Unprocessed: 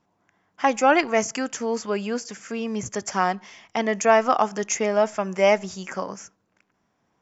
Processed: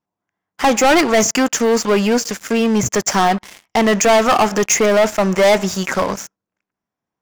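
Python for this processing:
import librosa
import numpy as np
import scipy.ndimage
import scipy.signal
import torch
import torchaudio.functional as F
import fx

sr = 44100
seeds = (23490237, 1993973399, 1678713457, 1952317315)

y = fx.leveller(x, sr, passes=5)
y = y * librosa.db_to_amplitude(-4.0)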